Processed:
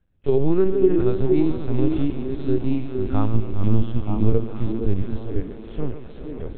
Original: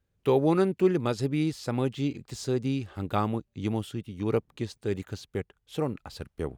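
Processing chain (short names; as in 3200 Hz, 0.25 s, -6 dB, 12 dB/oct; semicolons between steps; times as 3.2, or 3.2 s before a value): multi-head echo 0.135 s, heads first and third, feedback 68%, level -14.5 dB; harmonic-percussive split percussive -15 dB; 3.34–5.4 low shelf 160 Hz +10.5 dB; LPC vocoder at 8 kHz pitch kept; low shelf 76 Hz +11.5 dB; notch 2400 Hz, Q 24; delay with a stepping band-pass 0.464 s, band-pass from 300 Hz, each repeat 1.4 oct, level -2 dB; gain +5 dB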